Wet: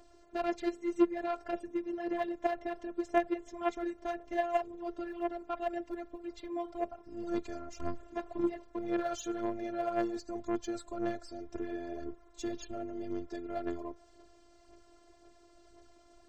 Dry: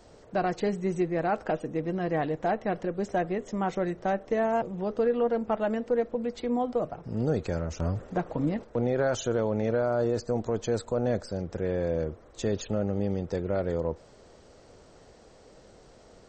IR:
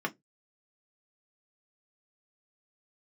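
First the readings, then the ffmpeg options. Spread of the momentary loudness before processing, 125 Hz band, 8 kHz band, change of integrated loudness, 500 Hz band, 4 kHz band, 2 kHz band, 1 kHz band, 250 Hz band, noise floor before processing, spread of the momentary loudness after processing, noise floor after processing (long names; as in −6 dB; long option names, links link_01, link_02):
5 LU, −22.0 dB, −7.0 dB, −7.5 dB, −9.0 dB, −6.5 dB, −6.5 dB, −5.0 dB, −5.0 dB, −55 dBFS, 10 LU, −61 dBFS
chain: -af "aphaser=in_gain=1:out_gain=1:delay=3.8:decay=0.48:speed=1.9:type=sinusoidal,afftfilt=real='hypot(re,im)*cos(PI*b)':imag='0':win_size=512:overlap=0.75,aeval=exprs='0.237*(cos(1*acos(clip(val(0)/0.237,-1,1)))-cos(1*PI/2))+0.0335*(cos(3*acos(clip(val(0)/0.237,-1,1)))-cos(3*PI/2))+0.00422*(cos(8*acos(clip(val(0)/0.237,-1,1)))-cos(8*PI/2))':channel_layout=same"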